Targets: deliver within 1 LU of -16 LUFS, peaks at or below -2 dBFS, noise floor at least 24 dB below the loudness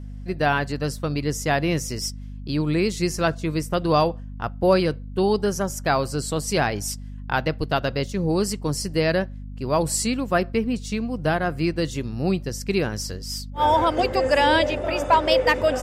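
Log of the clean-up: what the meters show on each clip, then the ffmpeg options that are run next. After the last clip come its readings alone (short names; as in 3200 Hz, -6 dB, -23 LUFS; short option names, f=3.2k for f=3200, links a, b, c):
hum 50 Hz; harmonics up to 250 Hz; hum level -33 dBFS; loudness -23.0 LUFS; peak -7.0 dBFS; loudness target -16.0 LUFS
-> -af "bandreject=f=50:t=h:w=4,bandreject=f=100:t=h:w=4,bandreject=f=150:t=h:w=4,bandreject=f=200:t=h:w=4,bandreject=f=250:t=h:w=4"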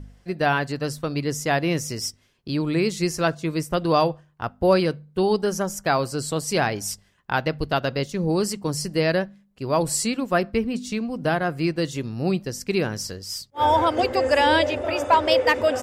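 hum none; loudness -23.5 LUFS; peak -7.0 dBFS; loudness target -16.0 LUFS
-> -af "volume=7.5dB,alimiter=limit=-2dB:level=0:latency=1"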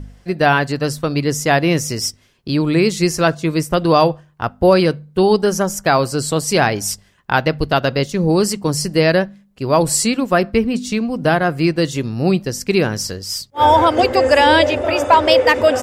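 loudness -16.0 LUFS; peak -2.0 dBFS; noise floor -53 dBFS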